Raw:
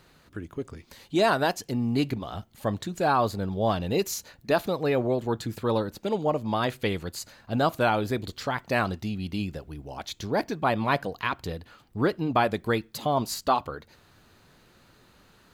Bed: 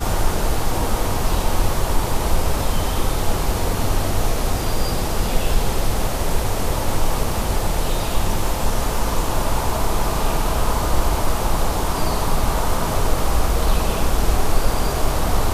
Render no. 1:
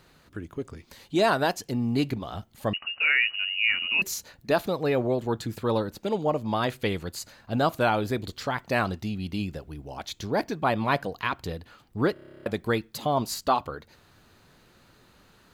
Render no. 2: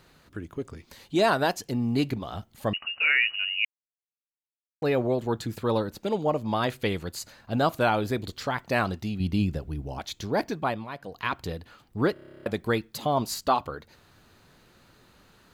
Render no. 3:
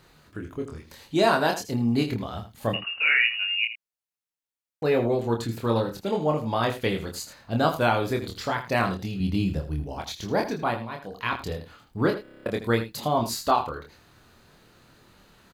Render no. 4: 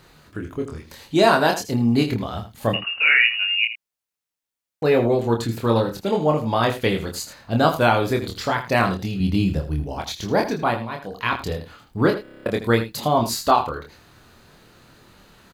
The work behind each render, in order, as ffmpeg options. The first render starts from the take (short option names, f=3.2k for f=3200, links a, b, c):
-filter_complex "[0:a]asettb=1/sr,asplit=3[a][b][c];[a]atrim=end=2.734[d];[b]atrim=start=2.73:end=4.02,asetpts=PTS-STARTPTS,afade=t=in:d=0.004:c=qsin,afade=t=out:st=1.286:d=0.004:c=qsin,lowpass=f=2.6k:t=q:w=0.5098,lowpass=f=2.6k:t=q:w=0.6013,lowpass=f=2.6k:t=q:w=0.9,lowpass=f=2.6k:t=q:w=2.563,afreqshift=-3000[e];[c]atrim=start=4.016[f];[d][e]acrossfade=d=0.004:c1=hsin:c2=qsin[g];[g][f]acrossfade=d=0.004:c1=qsin:c2=hsin,asplit=12[h][i][j][k][l][m][n][o][p][q][r][s];[h]atrim=end=12.162[t];[i]atrim=start=12.128:end=12.162[u];[j]atrim=start=12.128:end=12.162[v];[k]atrim=start=12.128:end=12.162[w];[l]atrim=start=12.128:end=12.162[x];[m]atrim=start=12.128:end=12.162[y];[n]atrim=start=12.128:end=12.162[z];[o]atrim=start=12.128:end=12.162[aa];[p]atrim=start=12.128:end=12.162[ab];[q]atrim=start=12.128:end=12.162[ac];[r]atrim=start=12.128:end=12.162[ad];[s]atrim=start=12.458[ae];[t][u]acrossfade=d=0.004:c1=hsin:c2=hsin[af];[af][v]acrossfade=d=0.004:c1=hsin:c2=hsin[ag];[ag][w]acrossfade=d=0.004:c1=hsin:c2=hsin[ah];[ah][x]acrossfade=d=0.004:c1=hsin:c2=hsin[ai];[ai][y]acrossfade=d=0.004:c1=hsin:c2=hsin[aj];[aj][z]acrossfade=d=0.004:c1=hsin:c2=hsin[ak];[ak][aa]acrossfade=d=0.004:c1=hsin:c2=hsin[al];[al][ab]acrossfade=d=0.004:c1=hsin:c2=hsin[am];[am][ac]acrossfade=d=0.004:c1=hsin:c2=hsin[an];[an][ad]acrossfade=d=0.004:c1=hsin:c2=hsin[ao];[ao][ae]acrossfade=d=0.004:c1=hsin:c2=hsin"
-filter_complex "[0:a]asettb=1/sr,asplit=3[a][b][c];[a]atrim=end=9.204[d];[b]atrim=start=9.2:end=10,asetpts=PTS-STARTPTS,afade=t=in:d=0.004:c=qsin,afade=t=out:st=0.796:d=0.004:c=qsin,lowshelf=f=280:g=8.5[e];[c]atrim=start=9.996[f];[d][e]acrossfade=d=0.004:c1=hsin:c2=qsin[g];[g][f]acrossfade=d=0.004:c1=qsin:c2=hsin,asplit=5[h][i][j][k][l];[h]atrim=end=3.65,asetpts=PTS-STARTPTS,afade=t=out:st=3.646:d=0.004:c=hsin[m];[i]atrim=start=3.65:end=4.82,asetpts=PTS-STARTPTS,volume=0[n];[j]atrim=start=4.82:end=10.88,asetpts=PTS-STARTPTS,afade=t=in:d=0.004:c=hsin,afade=t=out:st=5.73:d=0.33:silence=0.199526[o];[k]atrim=start=10.88:end=10.98,asetpts=PTS-STARTPTS,volume=-14dB[p];[l]atrim=start=10.98,asetpts=PTS-STARTPTS,afade=t=in:d=0.33:silence=0.199526[q];[m][n][o][p][q]concat=n=5:v=0:a=1"
-filter_complex "[0:a]asplit=2[a][b];[b]adelay=26,volume=-4dB[c];[a][c]amix=inputs=2:normalize=0,aecho=1:1:80:0.251"
-af "volume=5dB"